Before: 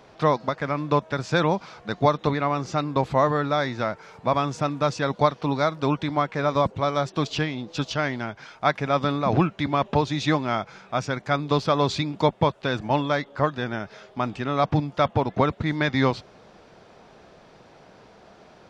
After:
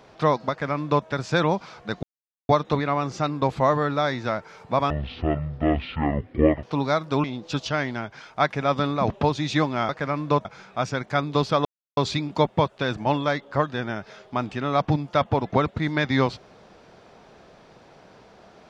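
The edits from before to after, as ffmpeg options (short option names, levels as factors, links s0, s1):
-filter_complex "[0:a]asplit=9[s0][s1][s2][s3][s4][s5][s6][s7][s8];[s0]atrim=end=2.03,asetpts=PTS-STARTPTS,afade=t=out:st=2.026:d=0.004:c=hsin,apad=pad_dur=0.46[s9];[s1]atrim=start=2.03:end=4.444,asetpts=PTS-STARTPTS,afade=t=in:d=0.004:c=hsin[s10];[s2]atrim=start=4.44:end=5.34,asetpts=PTS-STARTPTS,asetrate=22932,aresample=44100[s11];[s3]atrim=start=5.336:end=5.952[s12];[s4]atrim=start=7.488:end=9.352[s13];[s5]atrim=start=9.818:end=10.612[s14];[s6]atrim=start=0.498:end=1.062[s15];[s7]atrim=start=10.608:end=11.81,asetpts=PTS-STARTPTS,afade=t=out:st=1.198:d=0.004:c=hsin,apad=pad_dur=0.32[s16];[s8]atrim=start=11.81,asetpts=PTS-STARTPTS,afade=t=in:d=0.004:c=hsin[s17];[s9][s10]concat=n=2:v=0:a=1[s18];[s18][s11]acrossfade=d=0.004:c1=hsin:c2=hsin[s19];[s19][s12]acrossfade=d=0.004:c1=hsin:c2=hsin[s20];[s20][s13]acrossfade=d=0.004:c1=hsin:c2=hsin[s21];[s21][s14]acrossfade=d=0.004:c1=hsin:c2=hsin[s22];[s22][s15]acrossfade=d=0.004:c1=hsin:c2=hsin[s23];[s16][s17]concat=n=2:v=0:a=1[s24];[s23][s24]acrossfade=d=0.004:c1=hsin:c2=hsin"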